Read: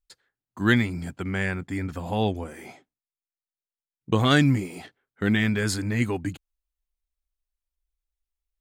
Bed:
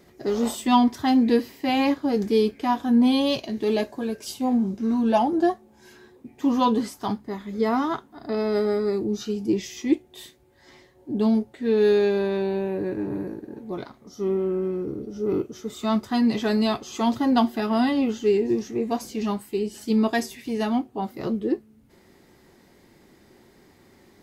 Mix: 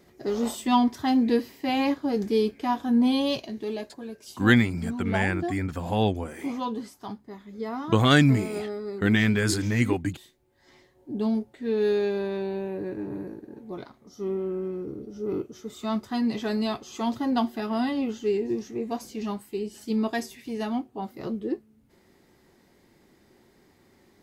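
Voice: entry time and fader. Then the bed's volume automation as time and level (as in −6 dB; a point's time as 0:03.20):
3.80 s, +1.0 dB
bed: 0:03.36 −3 dB
0:03.79 −10 dB
0:10.38 −10 dB
0:10.78 −5 dB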